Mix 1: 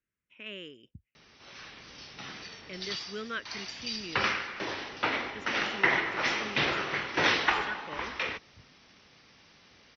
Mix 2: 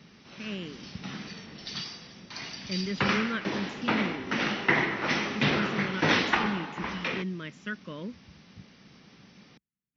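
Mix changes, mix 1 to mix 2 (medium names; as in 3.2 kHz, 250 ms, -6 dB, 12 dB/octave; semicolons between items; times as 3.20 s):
background: entry -1.15 s; master: add peaking EQ 190 Hz +14.5 dB 1.2 oct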